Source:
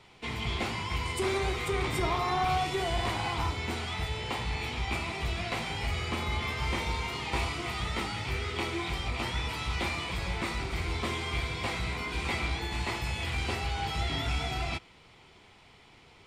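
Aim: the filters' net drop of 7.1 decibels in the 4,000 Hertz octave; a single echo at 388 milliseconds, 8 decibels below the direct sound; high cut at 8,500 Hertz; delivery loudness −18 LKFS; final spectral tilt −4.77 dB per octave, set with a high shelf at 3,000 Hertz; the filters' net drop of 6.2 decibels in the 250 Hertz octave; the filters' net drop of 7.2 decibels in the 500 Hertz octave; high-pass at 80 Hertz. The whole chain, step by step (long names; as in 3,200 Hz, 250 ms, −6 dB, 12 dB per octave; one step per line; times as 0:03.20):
high-pass filter 80 Hz
low-pass filter 8,500 Hz
parametric band 250 Hz −6 dB
parametric band 500 Hz −8 dB
high-shelf EQ 3,000 Hz −5.5 dB
parametric band 4,000 Hz −5 dB
single-tap delay 388 ms −8 dB
level +18 dB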